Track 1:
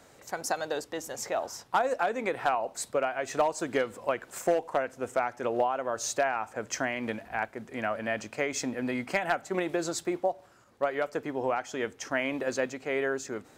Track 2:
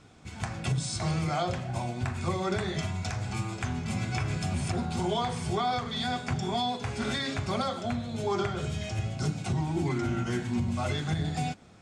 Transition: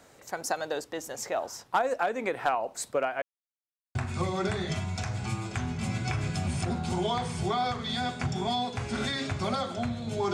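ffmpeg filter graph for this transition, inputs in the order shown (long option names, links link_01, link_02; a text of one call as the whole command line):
ffmpeg -i cue0.wav -i cue1.wav -filter_complex "[0:a]apad=whole_dur=10.33,atrim=end=10.33,asplit=2[link_01][link_02];[link_01]atrim=end=3.22,asetpts=PTS-STARTPTS,afade=type=out:start_time=3.216:duration=0.004:curve=hsin[link_03];[link_02]atrim=start=3.22:end=3.95,asetpts=PTS-STARTPTS,volume=0[link_04];[1:a]atrim=start=2.02:end=8.4,asetpts=PTS-STARTPTS,afade=type=in:duration=0.004:curve=hsin[link_05];[link_03][link_04][link_05]concat=n=3:v=0:a=1" out.wav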